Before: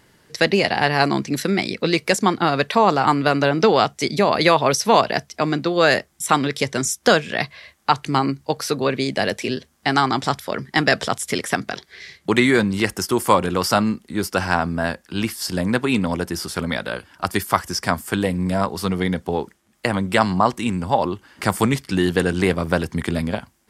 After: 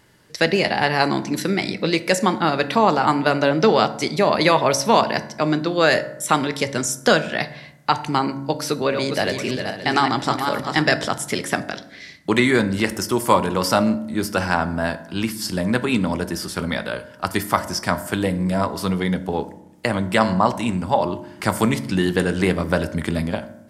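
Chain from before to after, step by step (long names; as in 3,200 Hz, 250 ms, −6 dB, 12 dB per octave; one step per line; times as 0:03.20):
0:08.66–0:10.82: feedback delay that plays each chunk backwards 262 ms, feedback 42%, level −5.5 dB
convolution reverb RT60 0.80 s, pre-delay 3 ms, DRR 10 dB
level −1 dB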